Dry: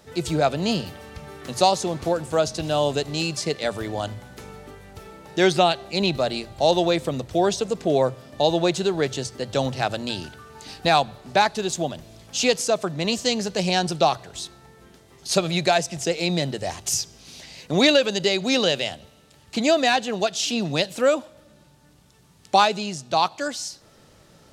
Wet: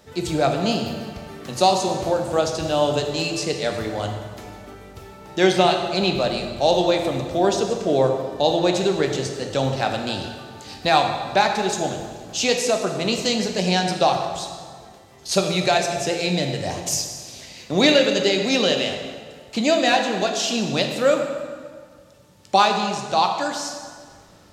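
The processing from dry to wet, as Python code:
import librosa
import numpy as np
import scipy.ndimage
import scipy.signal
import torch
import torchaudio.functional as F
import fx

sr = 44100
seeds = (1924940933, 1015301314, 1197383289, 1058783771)

y = fx.peak_eq(x, sr, hz=9800.0, db=-4.0, octaves=0.3)
y = fx.rev_plate(y, sr, seeds[0], rt60_s=1.8, hf_ratio=0.75, predelay_ms=0, drr_db=3.0)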